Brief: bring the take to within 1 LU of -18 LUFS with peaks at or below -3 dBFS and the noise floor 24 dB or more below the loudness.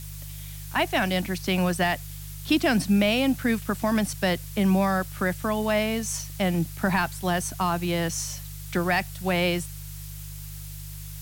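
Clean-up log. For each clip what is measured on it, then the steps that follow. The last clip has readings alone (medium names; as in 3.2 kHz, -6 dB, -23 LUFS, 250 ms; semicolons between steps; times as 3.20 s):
hum 50 Hz; highest harmonic 150 Hz; hum level -37 dBFS; noise floor -38 dBFS; noise floor target -50 dBFS; loudness -25.5 LUFS; peak level -11.0 dBFS; loudness target -18.0 LUFS
-> de-hum 50 Hz, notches 3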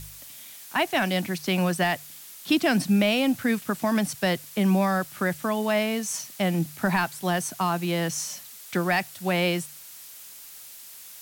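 hum not found; noise floor -45 dBFS; noise floor target -50 dBFS
-> noise reduction 6 dB, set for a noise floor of -45 dBFS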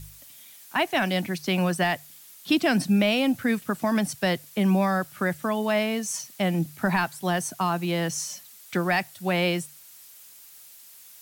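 noise floor -49 dBFS; noise floor target -50 dBFS
-> noise reduction 6 dB, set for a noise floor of -49 dBFS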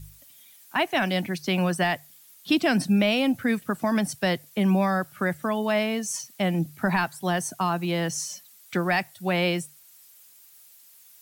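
noise floor -53 dBFS; loudness -25.5 LUFS; peak level -11.0 dBFS; loudness target -18.0 LUFS
-> trim +7.5 dB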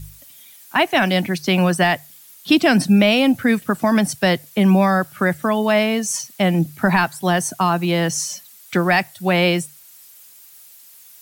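loudness -18.0 LUFS; peak level -3.5 dBFS; noise floor -46 dBFS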